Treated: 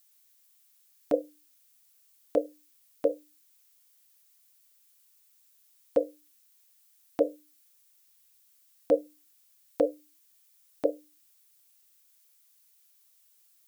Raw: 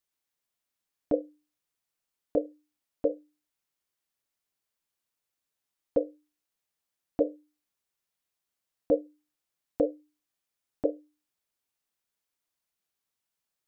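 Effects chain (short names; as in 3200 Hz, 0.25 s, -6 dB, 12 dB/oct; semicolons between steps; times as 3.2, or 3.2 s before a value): tilt +4.5 dB/oct; gain +6 dB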